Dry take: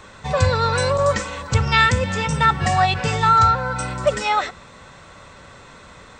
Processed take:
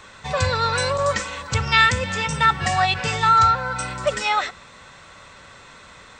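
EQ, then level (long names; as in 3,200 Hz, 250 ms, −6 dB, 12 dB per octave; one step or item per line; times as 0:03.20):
tilt shelving filter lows −5.5 dB, about 1,300 Hz
high-shelf EQ 3,900 Hz −6 dB
0.0 dB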